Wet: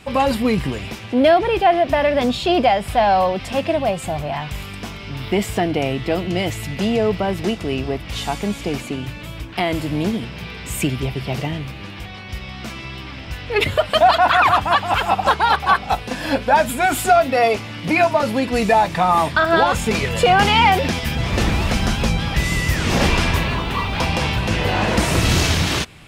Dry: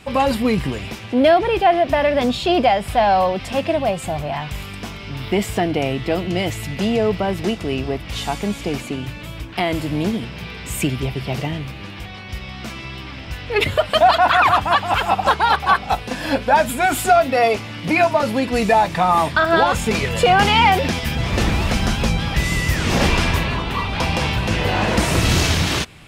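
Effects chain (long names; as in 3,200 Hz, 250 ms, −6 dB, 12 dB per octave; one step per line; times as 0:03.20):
0:23.34–0:24.05: mu-law and A-law mismatch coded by mu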